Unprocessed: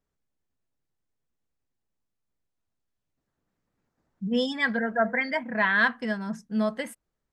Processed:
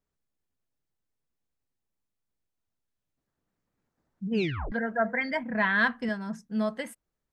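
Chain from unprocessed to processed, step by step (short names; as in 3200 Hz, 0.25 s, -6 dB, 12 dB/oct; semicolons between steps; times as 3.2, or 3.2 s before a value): 4.32 tape stop 0.40 s; 5.23–6.09 low shelf 180 Hz +9.5 dB; gain -2.5 dB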